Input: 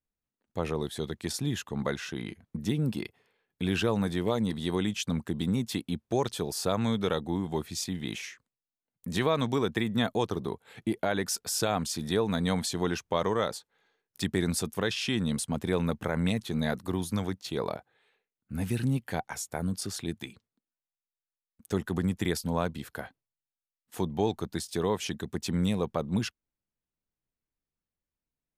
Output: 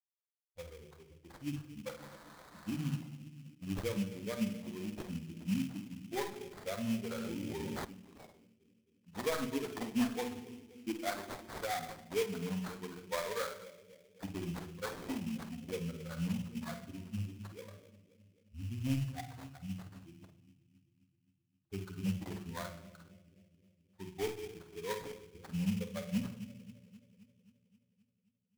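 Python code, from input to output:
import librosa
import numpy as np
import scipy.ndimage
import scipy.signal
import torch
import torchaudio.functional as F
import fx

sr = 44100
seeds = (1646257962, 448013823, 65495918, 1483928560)

p1 = fx.bin_expand(x, sr, power=3.0)
p2 = fx.high_shelf(p1, sr, hz=3900.0, db=-9.0)
p3 = fx.dmg_noise_band(p2, sr, seeds[0], low_hz=880.0, high_hz=2400.0, level_db=-56.0, at=(1.96, 2.95), fade=0.02)
p4 = p3 + fx.echo_bbd(p3, sr, ms=263, stages=1024, feedback_pct=63, wet_db=-16.5, dry=0)
p5 = np.clip(p4, -10.0 ** (-26.5 / 20.0), 10.0 ** (-26.5 / 20.0))
p6 = fx.doubler(p5, sr, ms=49.0, db=-10.0)
p7 = fx.room_shoebox(p6, sr, seeds[1], volume_m3=2800.0, walls='furnished', distance_m=1.9)
p8 = fx.sample_hold(p7, sr, seeds[2], rate_hz=2800.0, jitter_pct=20)
p9 = fx.env_flatten(p8, sr, amount_pct=100, at=(7.11, 7.85))
y = p9 * 10.0 ** (-2.5 / 20.0)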